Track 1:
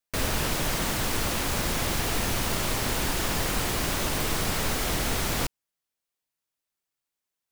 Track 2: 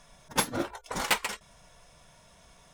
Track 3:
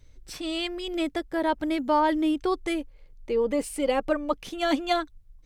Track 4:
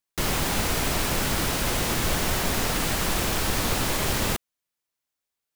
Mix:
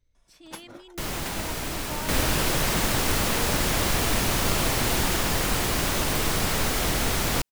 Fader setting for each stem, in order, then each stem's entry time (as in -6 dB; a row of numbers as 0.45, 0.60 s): +2.5, -14.5, -16.5, -6.0 dB; 1.95, 0.15, 0.00, 0.80 s